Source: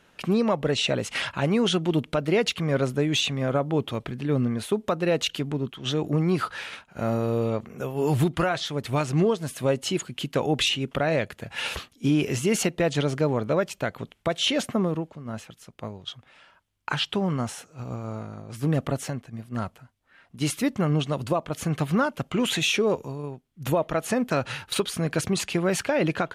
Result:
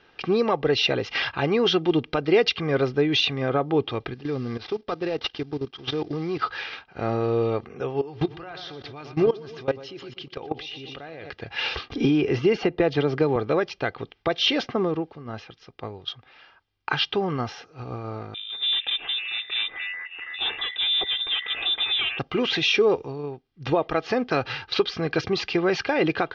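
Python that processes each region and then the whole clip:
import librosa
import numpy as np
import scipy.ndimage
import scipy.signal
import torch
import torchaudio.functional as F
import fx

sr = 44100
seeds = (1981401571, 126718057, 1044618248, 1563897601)

y = fx.chain(x, sr, fx.cvsd(bps=32000),
    fx.level_steps(step_db=14), at=(4.14, 6.42))
y = fx.chain(y, sr, fx.echo_feedback(ms=121, feedback_pct=49, wet_db=-12),
    fx.level_steps(step_db=20), at=(8.01, 11.3))
y = fx.chain(y, sr, fx.high_shelf(hz=2700.0, db=-10.0),
    fx.band_squash(depth_pct=100), at=(11.9, 13.36))
y = fx.chain(y, sr, fx.clip_hard(threshold_db=-25.5),
    fx.freq_invert(carrier_hz=3700),
    fx.echo_pitch(ms=454, semitones=-5, count=2, db_per_echo=-6.0), at=(18.34, 22.19))
y = scipy.signal.sosfilt(scipy.signal.butter(12, 5500.0, 'lowpass', fs=sr, output='sos'), y)
y = fx.low_shelf(y, sr, hz=120.0, db=-6.0)
y = y + 0.5 * np.pad(y, (int(2.5 * sr / 1000.0), 0))[:len(y)]
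y = F.gain(torch.from_numpy(y), 2.0).numpy()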